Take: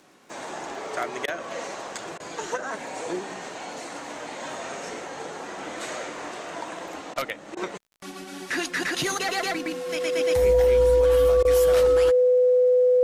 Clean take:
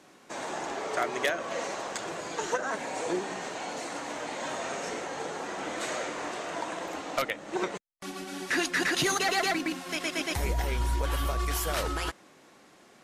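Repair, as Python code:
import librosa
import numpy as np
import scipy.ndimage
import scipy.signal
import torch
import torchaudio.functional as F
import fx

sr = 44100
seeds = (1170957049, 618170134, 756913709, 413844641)

y = fx.fix_declick_ar(x, sr, threshold=6.5)
y = fx.notch(y, sr, hz=500.0, q=30.0)
y = fx.fix_interpolate(y, sr, at_s=(1.26, 2.18, 7.14, 7.55, 11.43), length_ms=18.0)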